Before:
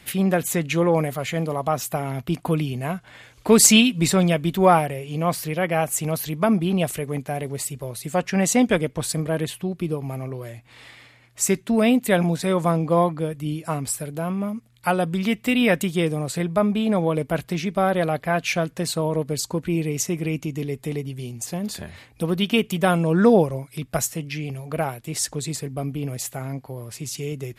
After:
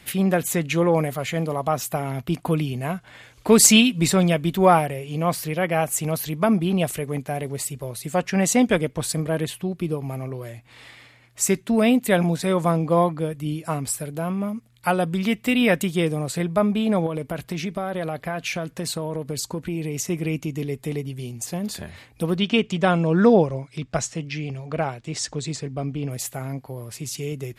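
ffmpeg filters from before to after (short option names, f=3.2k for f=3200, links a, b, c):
-filter_complex "[0:a]asettb=1/sr,asplit=3[a][b][c];[a]atrim=end=17.064[d];[b]atrim=start=17.06:end=20.1,asetpts=PTS-STARTPTS,afade=t=in:d=0.004:c=qsin,afade=t=out:st=3.036:d=0.004:c=qsin,acompressor=threshold=-23dB:ratio=4:attack=3.2:release=140:knee=1:detection=peak[e];[c]atrim=start=20.096[f];[d][e]acrossfade=d=0.004:c1=hsin:c2=qsin[g];[g][f]acrossfade=d=0.004:c1=qsin:c2=hsin,asettb=1/sr,asplit=3[h][i][j];[h]atrim=end=22.374[k];[i]atrim=start=22.37:end=26.11,asetpts=PTS-STARTPTS,afade=t=in:d=0.004:c=qsin,afade=t=out:st=3.736:d=0.004:c=qsin,lowpass=f=7.2k:w=0.5412,lowpass=f=7.2k:w=1.3066[l];[j]atrim=start=26.106[m];[k][l]acrossfade=d=0.004:c1=hsin:c2=qsin[n];[n][m]acrossfade=d=0.004:c1=qsin:c2=hsin"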